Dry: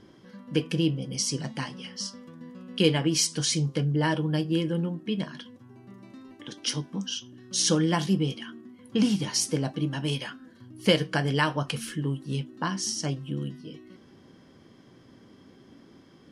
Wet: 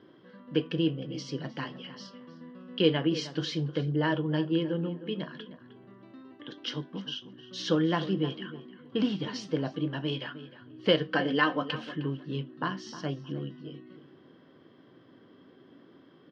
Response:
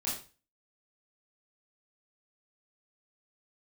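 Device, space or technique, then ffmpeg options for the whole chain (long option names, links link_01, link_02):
kitchen radio: -filter_complex "[0:a]highpass=170,equalizer=frequency=210:width_type=q:width=4:gain=-7,equalizer=frequency=840:width_type=q:width=4:gain=-5,equalizer=frequency=2300:width_type=q:width=4:gain=-8,lowpass=frequency=3500:width=0.5412,lowpass=frequency=3500:width=1.3066,asettb=1/sr,asplit=3[link_01][link_02][link_03];[link_01]atrim=end=11.084[link_04];[link_02]atrim=start=11.08:end=11.73,asetpts=PTS-STARTPTS,afade=type=in:duration=0.004:curve=qsin,afade=type=out:start_time=0.646:duration=0.004:curve=qsin,aecho=1:1:3.9:0.69,atrim=end_sample=28665[link_05];[link_03]atrim=start=11.726[link_06];[link_04][link_05]acrossfade=duration=0.004:curve1=hsin:curve2=qsin[link_07];[link_07][link_06]acrossfade=duration=0.004:curve1=qsin:curve2=hsin,asplit=2[link_08][link_09];[link_09]adelay=309,lowpass=frequency=2500:poles=1,volume=-13.5dB,asplit=2[link_10][link_11];[link_11]adelay=309,lowpass=frequency=2500:poles=1,volume=0.22,asplit=2[link_12][link_13];[link_13]adelay=309,lowpass=frequency=2500:poles=1,volume=0.22[link_14];[link_08][link_10][link_12][link_14]amix=inputs=4:normalize=0"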